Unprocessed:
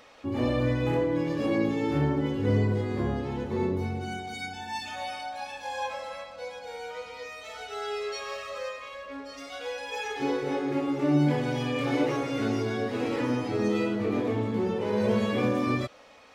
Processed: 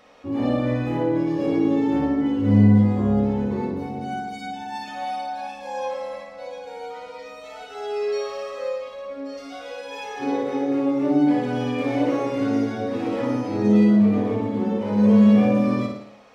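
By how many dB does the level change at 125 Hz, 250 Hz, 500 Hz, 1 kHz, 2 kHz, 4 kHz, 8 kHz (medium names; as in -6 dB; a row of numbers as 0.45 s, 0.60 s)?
+5.5 dB, +9.0 dB, +4.0 dB, +4.5 dB, -0.5 dB, -1.5 dB, no reading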